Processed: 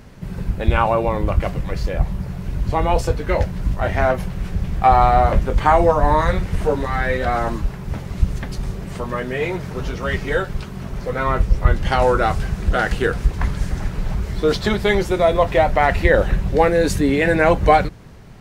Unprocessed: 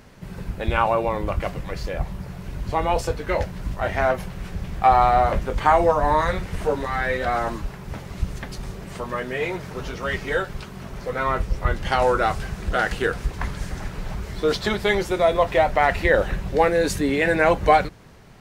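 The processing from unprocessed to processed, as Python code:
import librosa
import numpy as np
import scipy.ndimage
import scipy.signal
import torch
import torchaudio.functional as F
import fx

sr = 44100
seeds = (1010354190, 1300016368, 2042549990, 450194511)

y = fx.low_shelf(x, sr, hz=280.0, db=7.0)
y = F.gain(torch.from_numpy(y), 1.5).numpy()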